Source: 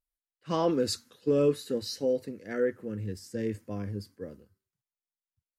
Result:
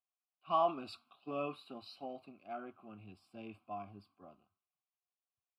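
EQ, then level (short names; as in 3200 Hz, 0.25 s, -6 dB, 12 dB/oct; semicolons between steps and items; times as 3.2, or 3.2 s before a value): vowel filter a; fixed phaser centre 1800 Hz, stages 6; +11.0 dB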